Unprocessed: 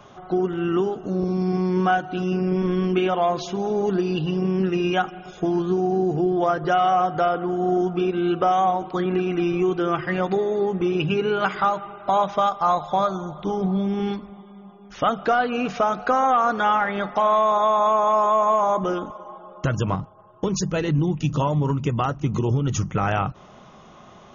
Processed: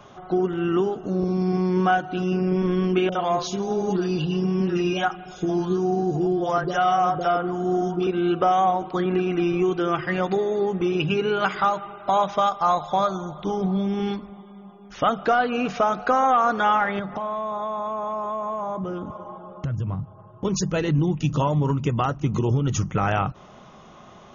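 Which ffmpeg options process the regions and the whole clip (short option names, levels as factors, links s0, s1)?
-filter_complex "[0:a]asettb=1/sr,asplit=3[s0][s1][s2];[s0]atrim=end=3.094[s3];[s1]atrim=start=3.09:end=8.07,asetpts=PTS-STARTPTS,afade=t=in:d=0.004:c=qsin,afade=t=out:st=4.976:d=0.004:c=qsin,highshelf=f=4100:g=7,acrossover=split=510|2500[s4][s5][s6];[s6]adelay=30[s7];[s5]adelay=60[s8];[s4][s8][s7]amix=inputs=3:normalize=0,atrim=end_sample=219618[s9];[s2]atrim=start=8.066[s10];[s3][s9]acrossfade=d=0.004:c1=hsin:c2=qsin[s11];[s11][s10]acrossfade=d=0.004:c1=qsin:c2=hsin,asettb=1/sr,asplit=3[s12][s13][s14];[s12]atrim=end=9.644[s15];[s13]atrim=start=9.64:end=14.13,asetpts=PTS-STARTPTS,afade=t=in:d=0.004:c=qsin,afade=t=out:st=4.486:d=0.004:c=qsin,lowpass=f=3100:p=1,aemphasis=mode=production:type=75fm[s16];[s14]atrim=start=14.126[s17];[s15][s16]acrossfade=d=0.004:c1=hsin:c2=qsin[s18];[s18][s17]acrossfade=d=0.004:c1=qsin:c2=hsin,asettb=1/sr,asplit=3[s19][s20][s21];[s19]atrim=end=16.994[s22];[s20]atrim=start=16.99:end=20.45,asetpts=PTS-STARTPTS,afade=t=in:d=0.004:c=qsin,afade=t=out:st=3.456:d=0.004:c=qsin,lowpass=f=3600:p=1,equalizer=f=110:t=o:w=2:g=13.5,acompressor=threshold=0.0355:ratio=3:attack=3.2:release=140:knee=1:detection=peak[s23];[s21]atrim=start=20.446[s24];[s22][s23]acrossfade=d=0.004:c1=hsin:c2=qsin[s25];[s25][s24]acrossfade=d=0.004:c1=qsin:c2=hsin"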